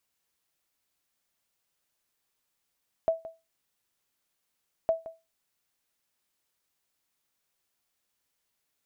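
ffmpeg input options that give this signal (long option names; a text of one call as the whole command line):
ffmpeg -f lavfi -i "aevalsrc='0.141*(sin(2*PI*654*mod(t,1.81))*exp(-6.91*mod(t,1.81)/0.24)+0.158*sin(2*PI*654*max(mod(t,1.81)-0.17,0))*exp(-6.91*max(mod(t,1.81)-0.17,0)/0.24))':duration=3.62:sample_rate=44100" out.wav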